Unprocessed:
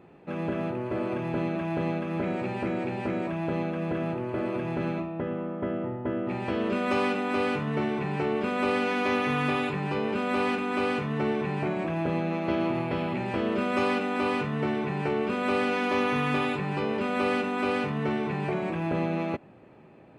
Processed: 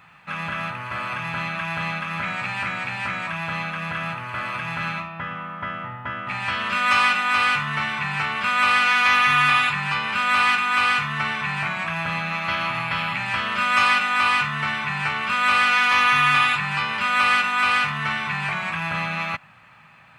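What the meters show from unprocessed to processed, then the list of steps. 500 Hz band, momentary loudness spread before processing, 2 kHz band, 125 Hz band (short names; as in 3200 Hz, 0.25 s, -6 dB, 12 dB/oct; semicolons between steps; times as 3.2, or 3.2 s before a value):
-10.5 dB, 5 LU, +14.0 dB, -0.5 dB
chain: EQ curve 160 Hz 0 dB, 370 Hz -21 dB, 1200 Hz +14 dB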